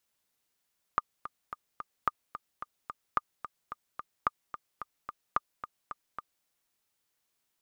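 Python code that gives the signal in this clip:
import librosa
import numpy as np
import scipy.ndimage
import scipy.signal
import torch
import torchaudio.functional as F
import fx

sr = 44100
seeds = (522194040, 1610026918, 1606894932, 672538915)

y = fx.click_track(sr, bpm=219, beats=4, bars=5, hz=1210.0, accent_db=12.5, level_db=-12.0)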